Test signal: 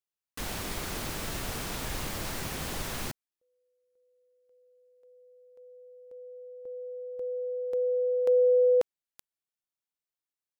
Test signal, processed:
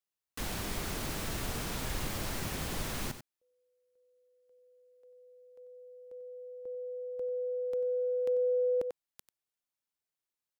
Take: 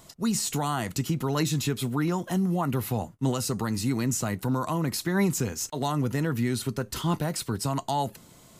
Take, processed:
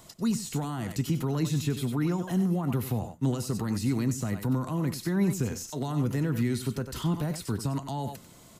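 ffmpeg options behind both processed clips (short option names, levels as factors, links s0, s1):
-filter_complex "[0:a]aecho=1:1:93:0.224,acrossover=split=360[s0][s1];[s1]acompressor=threshold=0.0224:ratio=6:attack=0.39:release=102:knee=2.83:detection=peak[s2];[s0][s2]amix=inputs=2:normalize=0"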